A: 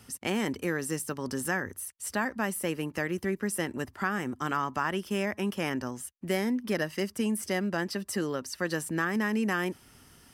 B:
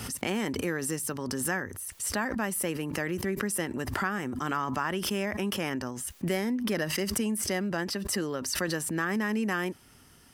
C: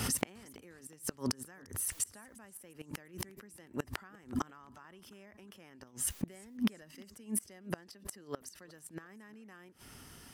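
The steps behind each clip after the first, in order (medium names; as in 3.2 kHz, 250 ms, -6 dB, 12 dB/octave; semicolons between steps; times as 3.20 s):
swell ahead of each attack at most 34 dB/s; trim -1 dB
inverted gate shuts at -22 dBFS, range -28 dB; modulated delay 353 ms, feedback 42%, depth 185 cents, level -24 dB; trim +3 dB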